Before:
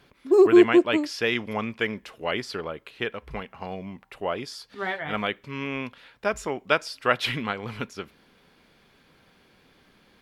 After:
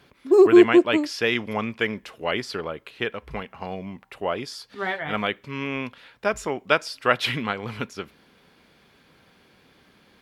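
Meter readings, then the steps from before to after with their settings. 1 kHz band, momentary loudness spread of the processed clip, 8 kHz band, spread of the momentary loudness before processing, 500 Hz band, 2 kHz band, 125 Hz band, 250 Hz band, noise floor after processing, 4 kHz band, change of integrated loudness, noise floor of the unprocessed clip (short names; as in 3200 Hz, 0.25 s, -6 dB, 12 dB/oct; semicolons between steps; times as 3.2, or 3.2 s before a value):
+2.0 dB, 18 LU, +2.0 dB, 18 LU, +2.0 dB, +2.0 dB, +2.0 dB, +2.0 dB, -59 dBFS, +2.0 dB, +2.0 dB, -61 dBFS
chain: HPF 44 Hz; gain +2 dB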